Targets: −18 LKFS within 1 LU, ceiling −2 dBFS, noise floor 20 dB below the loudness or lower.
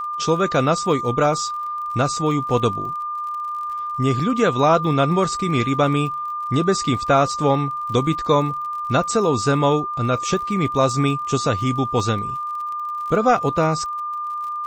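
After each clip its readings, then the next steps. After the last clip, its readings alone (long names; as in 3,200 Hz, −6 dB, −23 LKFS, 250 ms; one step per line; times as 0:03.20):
crackle rate 45 per second; interfering tone 1,200 Hz; level of the tone −24 dBFS; integrated loudness −20.5 LKFS; sample peak −5.5 dBFS; target loudness −18.0 LKFS
→ click removal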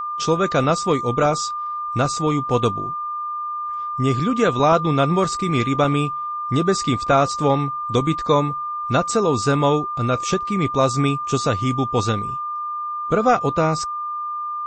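crackle rate 0 per second; interfering tone 1,200 Hz; level of the tone −24 dBFS
→ notch filter 1,200 Hz, Q 30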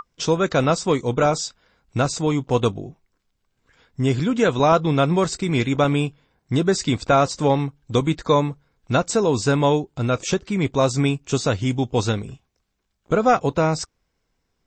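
interfering tone none found; integrated loudness −21.0 LKFS; sample peak −6.0 dBFS; target loudness −18.0 LKFS
→ level +3 dB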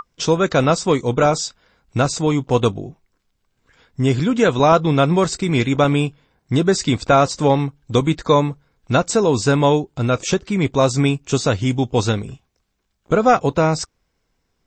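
integrated loudness −18.0 LKFS; sample peak −3.0 dBFS; background noise floor −71 dBFS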